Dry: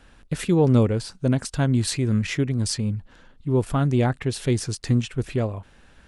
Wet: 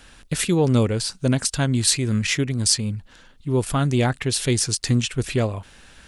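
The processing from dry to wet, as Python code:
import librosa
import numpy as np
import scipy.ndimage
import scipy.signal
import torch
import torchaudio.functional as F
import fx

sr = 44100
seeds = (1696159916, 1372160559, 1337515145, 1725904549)

p1 = fx.high_shelf(x, sr, hz=2200.0, db=11.5)
p2 = fx.rider(p1, sr, range_db=4, speed_s=0.5)
p3 = p1 + F.gain(torch.from_numpy(p2), 0.0).numpy()
y = F.gain(torch.from_numpy(p3), -6.0).numpy()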